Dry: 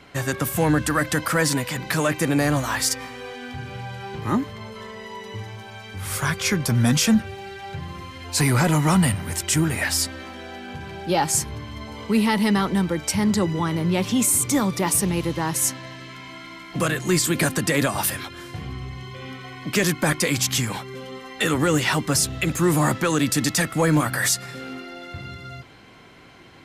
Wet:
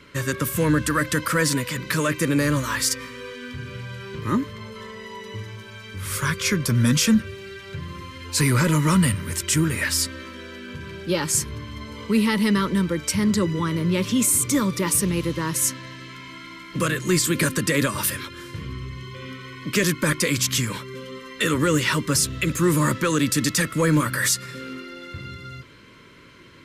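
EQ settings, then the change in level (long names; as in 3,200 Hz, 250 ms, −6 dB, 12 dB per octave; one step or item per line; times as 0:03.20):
Butterworth band-reject 750 Hz, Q 2.2
0.0 dB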